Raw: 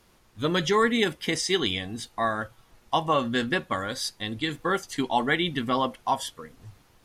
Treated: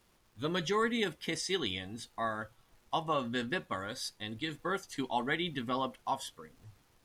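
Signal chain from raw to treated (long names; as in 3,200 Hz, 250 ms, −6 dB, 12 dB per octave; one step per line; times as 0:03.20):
surface crackle 290 per second −50 dBFS
level −8.5 dB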